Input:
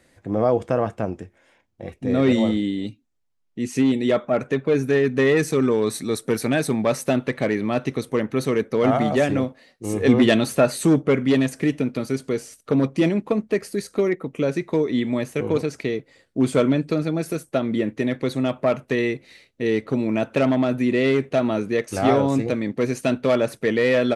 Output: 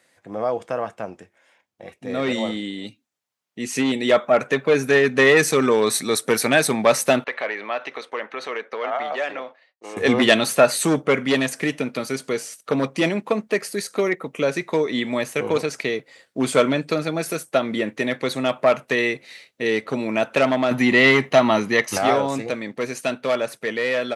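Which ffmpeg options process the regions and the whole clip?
ffmpeg -i in.wav -filter_complex "[0:a]asettb=1/sr,asplit=3[link_01][link_02][link_03];[link_01]atrim=end=7.244[link_04];[link_02]atrim=start=7.24:end=9.97,asetpts=PTS-STARTPTS,afade=type=in:duration=0.004:curve=qsin,afade=type=out:start_time=2.726:duration=0.004:curve=qsin,agate=range=-33dB:threshold=-45dB:ratio=3:release=100:detection=peak,acompressor=threshold=-21dB:ratio=4:attack=3.2:release=140:knee=1:detection=peak,highpass=550,lowpass=3200[link_05];[link_03]atrim=start=9.966[link_06];[link_04][link_05]acrossfade=duration=0.004:curve1=hsin:curve2=qsin[link_07];[link_07][link_06]acrossfade=duration=0.004:curve1=qsin:curve2=hsin,asettb=1/sr,asplit=3[link_08][link_09][link_10];[link_08]atrim=end=20.714[link_11];[link_09]atrim=start=20.71:end=21.98,asetpts=PTS-STARTPTS,afade=type=in:duration=0.004:curve=qsin,afade=type=out:start_time=1.266:duration=0.004:curve=qsin,equalizer=frequency=8500:width=3.4:gain=-9,aecho=1:1:1:0.43,atrim=end_sample=56007,acontrast=50[link_12];[link_10]atrim=start=21.976[link_13];[link_11][link_12]acrossfade=duration=0.004:curve1=hsin:curve2=qsin[link_14];[link_14][link_13]acrossfade=duration=0.004:curve1=qsin:curve2=hsin,highpass=240,equalizer=frequency=310:width_type=o:width=1.5:gain=-9,dynaudnorm=framelen=990:gausssize=7:maxgain=11.5dB" out.wav

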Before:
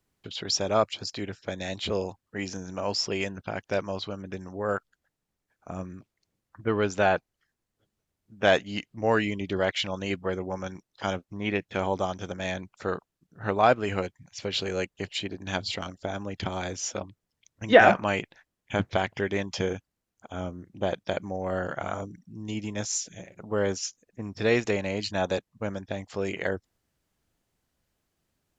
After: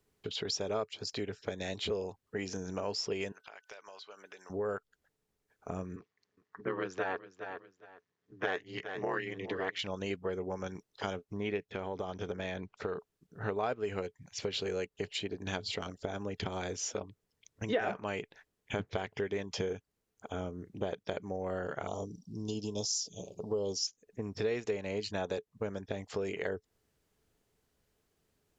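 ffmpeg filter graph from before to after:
ffmpeg -i in.wav -filter_complex "[0:a]asettb=1/sr,asplit=3[link_01][link_02][link_03];[link_01]atrim=end=3.324[link_04];[link_02]atrim=start=3.32:end=4.5,asetpts=PTS-STARTPTS,afade=type=in:duration=0.004:curve=qsin,afade=type=out:start_time=1.176:duration=0.004:curve=qsin,highpass=990,acompressor=threshold=-46dB:ratio=16:attack=3.2:release=140:knee=1:detection=peak,aeval=exprs='val(0)+0.000251*sin(2*PI*1500*n/s)':channel_layout=same[link_05];[link_03]atrim=start=4.496[link_06];[link_04][link_05]acrossfade=duration=0.004:curve1=hsin:curve2=qsin[link_07];[link_07][link_06]acrossfade=duration=0.004:curve1=qsin:curve2=hsin,asettb=1/sr,asplit=3[link_08][link_09][link_10];[link_08]atrim=end=5.964[link_11];[link_09]atrim=start=5.96:end=9.79,asetpts=PTS-STARTPTS,afade=type=in:duration=0.004:curve=qsin,afade=type=out:start_time=3.826:duration=0.004:curve=qsin,aeval=exprs='val(0)*sin(2*PI*92*n/s)':channel_layout=same,highpass=120,equalizer=frequency=220:width_type=q:width=4:gain=-4,equalizer=frequency=540:width_type=q:width=4:gain=-3,equalizer=frequency=1100:width_type=q:width=4:gain=7,equalizer=frequency=1800:width_type=q:width=4:gain=9,lowpass=frequency=6400:width=0.5412,lowpass=frequency=6400:width=1.3066,aecho=1:1:411|822:0.119|0.0238,atrim=end_sample=168903[link_12];[link_10]atrim=start=9.786[link_13];[link_11][link_12]acrossfade=duration=0.004:curve1=hsin:curve2=qsin[link_14];[link_14][link_13]acrossfade=duration=0.004:curve1=qsin:curve2=hsin,asettb=1/sr,asplit=3[link_15][link_16][link_17];[link_15]atrim=end=11.724[link_18];[link_16]atrim=start=11.72:end=12.97,asetpts=PTS-STARTPTS,afade=type=in:duration=0.004:curve=qsin,afade=type=out:start_time=1.246:duration=0.004:curve=qsin,lowpass=4500,acompressor=threshold=-30dB:ratio=2.5:attack=3.2:release=140:knee=1:detection=peak[link_19];[link_17]atrim=start=12.966[link_20];[link_18][link_19]acrossfade=duration=0.004:curve1=hsin:curve2=qsin[link_21];[link_21][link_20]acrossfade=duration=0.004:curve1=qsin:curve2=hsin,asettb=1/sr,asplit=3[link_22][link_23][link_24];[link_22]atrim=end=21.874[link_25];[link_23]atrim=start=21.87:end=23.87,asetpts=PTS-STARTPTS,afade=type=in:duration=0.004:curve=qsin,afade=type=out:start_time=1.996:duration=0.004:curve=qsin,asuperstop=centerf=1800:order=8:qfactor=1,equalizer=frequency=5000:width=2.5:gain=14[link_26];[link_24]atrim=start=23.866[link_27];[link_25][link_26]acrossfade=duration=0.004:curve1=hsin:curve2=qsin[link_28];[link_28][link_27]acrossfade=duration=0.004:curve1=qsin:curve2=hsin,equalizer=frequency=430:width_type=o:width=0.21:gain=11.5,acompressor=threshold=-35dB:ratio=3" out.wav

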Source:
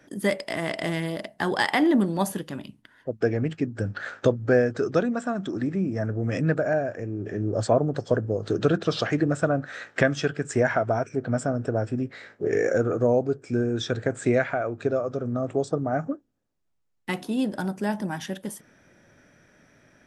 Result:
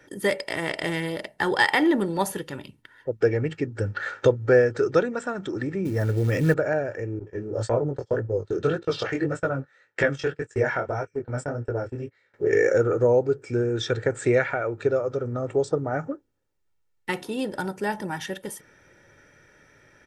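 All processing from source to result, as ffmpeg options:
ffmpeg -i in.wav -filter_complex "[0:a]asettb=1/sr,asplit=3[link_01][link_02][link_03];[link_01]atrim=end=5.854[link_04];[link_02]atrim=start=5.85:end=6.54,asetpts=PTS-STARTPTS,afade=type=in:duration=0.004:curve=qsin,afade=type=out:start_time=0.686:duration=0.004:curve=qsin,acrusher=bits=6:mode=log:mix=0:aa=0.000001,lowshelf=frequency=380:gain=4.5[link_05];[link_03]atrim=start=6.536[link_06];[link_04][link_05]acrossfade=duration=0.004:curve1=hsin:curve2=qsin[link_07];[link_07][link_06]acrossfade=duration=0.004:curve1=qsin:curve2=hsin,asettb=1/sr,asplit=3[link_08][link_09][link_10];[link_08]atrim=end=7.194[link_11];[link_09]atrim=start=7.19:end=12.34,asetpts=PTS-STARTPTS,afade=type=in:duration=0.004:curve=qsin,afade=type=out:start_time=5.146:duration=0.004:curve=qsin,agate=range=-22dB:threshold=-32dB:ratio=16:release=100:detection=peak,flanger=delay=17:depth=6.5:speed=1.8[link_12];[link_10]atrim=start=12.336[link_13];[link_11][link_12]acrossfade=duration=0.004:curve1=hsin:curve2=qsin[link_14];[link_14][link_13]acrossfade=duration=0.004:curve1=qsin:curve2=hsin,equalizer=frequency=1900:width_type=o:width=1:gain=3.5,aecho=1:1:2.2:0.53" out.wav

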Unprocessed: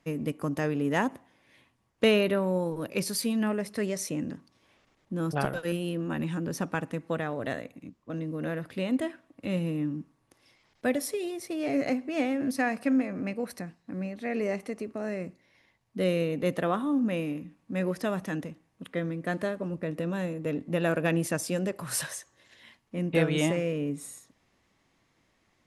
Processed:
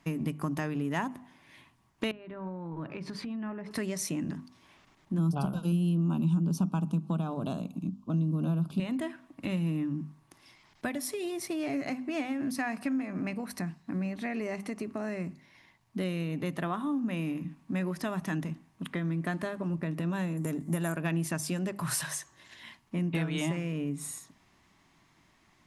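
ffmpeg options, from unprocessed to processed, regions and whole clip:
ffmpeg -i in.wav -filter_complex "[0:a]asettb=1/sr,asplit=3[link_01][link_02][link_03];[link_01]atrim=end=2.114[link_04];[link_02]atrim=start=2.11:end=3.71,asetpts=PTS-STARTPTS,afade=type=in:duration=0.004:curve=qsin,afade=type=out:start_time=1.596:duration=0.004:curve=qsin,lowpass=2100,bandreject=frequency=142.7:width_type=h:width=4,bandreject=frequency=285.4:width_type=h:width=4,bandreject=frequency=428.1:width_type=h:width=4,bandreject=frequency=570.8:width_type=h:width=4,bandreject=frequency=713.5:width_type=h:width=4,bandreject=frequency=856.2:width_type=h:width=4,bandreject=frequency=998.9:width_type=h:width=4,bandreject=frequency=1141.6:width_type=h:width=4,bandreject=frequency=1284.3:width_type=h:width=4,bandreject=frequency=1427:width_type=h:width=4,bandreject=frequency=1569.7:width_type=h:width=4,bandreject=frequency=1712.4:width_type=h:width=4,acompressor=threshold=-38dB:ratio=12:attack=3.2:release=140:knee=1:detection=peak[link_05];[link_03]atrim=start=3.706[link_06];[link_04][link_05]acrossfade=duration=0.004:curve1=hsin:curve2=qsin[link_07];[link_07][link_06]acrossfade=duration=0.004:curve1=qsin:curve2=hsin,asettb=1/sr,asplit=3[link_08][link_09][link_10];[link_08]atrim=end=5.184[link_11];[link_09]atrim=start=5.18:end=8.8,asetpts=PTS-STARTPTS,afade=type=in:duration=0.004:curve=qsin,afade=type=out:start_time=3.616:duration=0.004:curve=qsin,asuperstop=centerf=1900:order=4:qfactor=1.3,equalizer=frequency=190:width=2.7:gain=13.5[link_12];[link_10]atrim=start=8.796[link_13];[link_11][link_12]acrossfade=duration=0.004:curve1=hsin:curve2=qsin[link_14];[link_14][link_13]acrossfade=duration=0.004:curve1=qsin:curve2=hsin,asettb=1/sr,asplit=3[link_15][link_16][link_17];[link_15]atrim=end=20.374[link_18];[link_16]atrim=start=20.37:end=20.96,asetpts=PTS-STARTPTS,afade=type=in:duration=0.004:curve=qsin,afade=type=out:start_time=0.586:duration=0.004:curve=qsin,highshelf=frequency=5700:width_type=q:width=1.5:gain=13,bandreject=frequency=2600:width=10[link_19];[link_17]atrim=start=20.956[link_20];[link_18][link_19]acrossfade=duration=0.004:curve1=hsin:curve2=qsin[link_21];[link_21][link_20]acrossfade=duration=0.004:curve1=qsin:curve2=hsin,bandreject=frequency=50:width_type=h:width=6,bandreject=frequency=100:width_type=h:width=6,bandreject=frequency=150:width_type=h:width=6,bandreject=frequency=200:width_type=h:width=6,bandreject=frequency=250:width_type=h:width=6,acompressor=threshold=-36dB:ratio=3,equalizer=frequency=160:width_type=o:width=0.33:gain=5,equalizer=frequency=500:width_type=o:width=0.33:gain=-12,equalizer=frequency=1000:width_type=o:width=0.33:gain=4,volume=5dB" out.wav

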